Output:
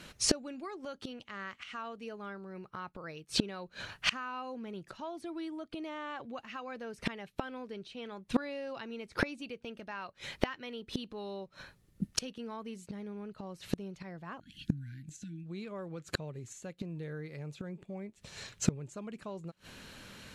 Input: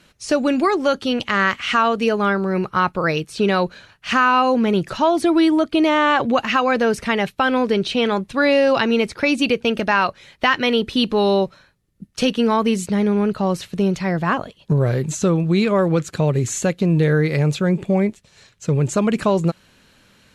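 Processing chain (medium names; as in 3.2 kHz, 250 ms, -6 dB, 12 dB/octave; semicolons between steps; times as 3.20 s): spectral selection erased 14.40–15.46 s, 340–1400 Hz; inverted gate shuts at -17 dBFS, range -28 dB; trim +3 dB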